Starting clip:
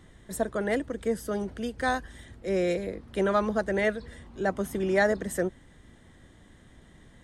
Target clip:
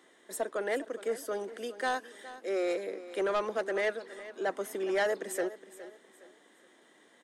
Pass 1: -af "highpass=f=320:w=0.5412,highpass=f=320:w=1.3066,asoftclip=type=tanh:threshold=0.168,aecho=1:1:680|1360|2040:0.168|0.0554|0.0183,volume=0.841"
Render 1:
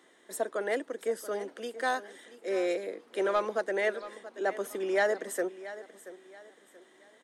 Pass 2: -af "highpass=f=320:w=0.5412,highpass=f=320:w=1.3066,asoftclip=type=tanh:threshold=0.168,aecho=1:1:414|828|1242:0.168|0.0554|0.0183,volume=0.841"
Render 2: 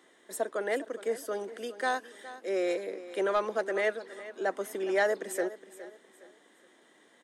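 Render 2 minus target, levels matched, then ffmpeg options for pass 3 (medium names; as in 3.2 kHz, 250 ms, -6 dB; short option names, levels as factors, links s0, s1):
saturation: distortion -8 dB
-af "highpass=f=320:w=0.5412,highpass=f=320:w=1.3066,asoftclip=type=tanh:threshold=0.0794,aecho=1:1:414|828|1242:0.168|0.0554|0.0183,volume=0.841"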